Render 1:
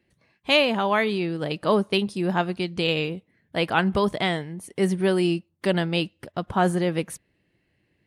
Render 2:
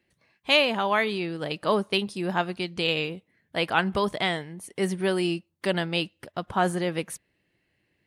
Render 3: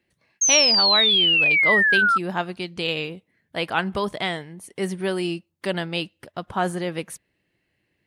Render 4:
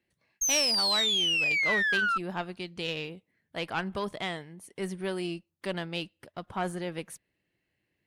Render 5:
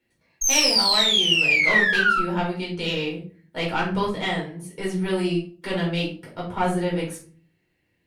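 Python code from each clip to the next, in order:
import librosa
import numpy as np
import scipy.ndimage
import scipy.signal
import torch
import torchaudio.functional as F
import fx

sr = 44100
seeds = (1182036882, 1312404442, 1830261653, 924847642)

y1 = fx.low_shelf(x, sr, hz=490.0, db=-6.0)
y2 = fx.spec_paint(y1, sr, seeds[0], shape='fall', start_s=0.41, length_s=1.77, low_hz=1300.0, high_hz=6500.0, level_db=-18.0)
y3 = fx.diode_clip(y2, sr, knee_db=-16.5)
y3 = y3 * librosa.db_to_amplitude(-7.0)
y4 = fx.room_shoebox(y3, sr, seeds[1], volume_m3=290.0, walls='furnished', distance_m=4.5)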